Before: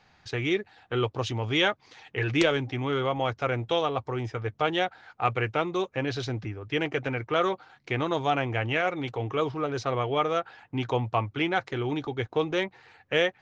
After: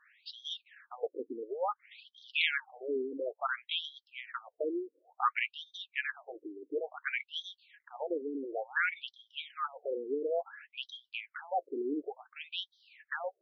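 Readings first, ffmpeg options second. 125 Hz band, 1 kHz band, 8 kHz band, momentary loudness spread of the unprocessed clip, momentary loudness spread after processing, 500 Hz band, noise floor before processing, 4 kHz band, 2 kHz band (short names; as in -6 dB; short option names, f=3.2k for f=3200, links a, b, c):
under -40 dB, -9.0 dB, n/a, 7 LU, 15 LU, -9.5 dB, -64 dBFS, -6.0 dB, -5.5 dB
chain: -af "equalizer=f=2k:w=1:g=7,afftfilt=real='re*between(b*sr/1024,330*pow(4500/330,0.5+0.5*sin(2*PI*0.57*pts/sr))/1.41,330*pow(4500/330,0.5+0.5*sin(2*PI*0.57*pts/sr))*1.41)':imag='im*between(b*sr/1024,330*pow(4500/330,0.5+0.5*sin(2*PI*0.57*pts/sr))/1.41,330*pow(4500/330,0.5+0.5*sin(2*PI*0.57*pts/sr))*1.41)':win_size=1024:overlap=0.75,volume=-3.5dB"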